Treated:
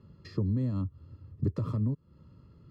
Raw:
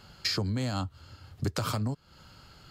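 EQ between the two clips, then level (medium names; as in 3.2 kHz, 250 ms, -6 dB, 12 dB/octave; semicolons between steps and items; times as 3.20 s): boxcar filter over 58 samples; high-pass 65 Hz; +3.0 dB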